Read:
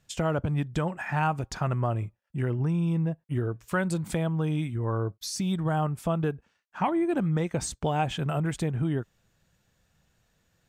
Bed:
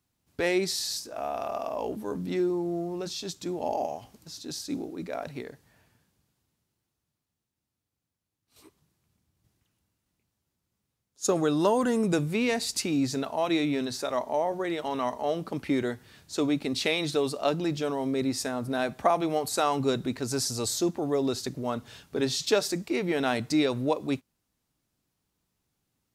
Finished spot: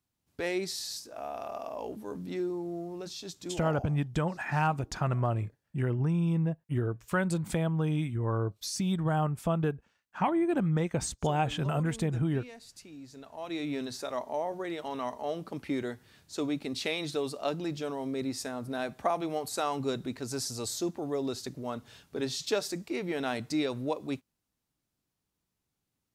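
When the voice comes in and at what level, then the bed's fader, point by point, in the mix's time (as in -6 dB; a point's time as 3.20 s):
3.40 s, -1.5 dB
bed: 3.59 s -6 dB
3.97 s -21 dB
13.06 s -21 dB
13.73 s -5.5 dB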